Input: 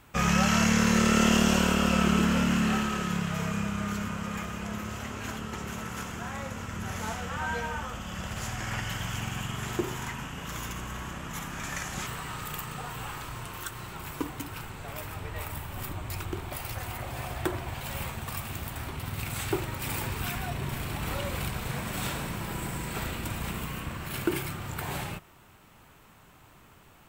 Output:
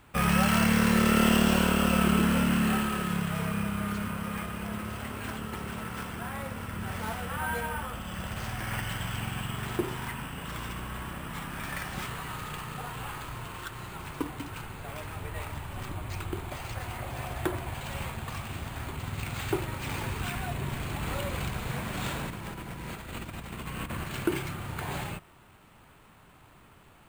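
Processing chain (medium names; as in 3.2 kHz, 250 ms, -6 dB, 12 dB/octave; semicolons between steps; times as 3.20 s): 22.30–24.04 s: compressor with a negative ratio -37 dBFS, ratio -0.5; careless resampling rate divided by 4×, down filtered, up hold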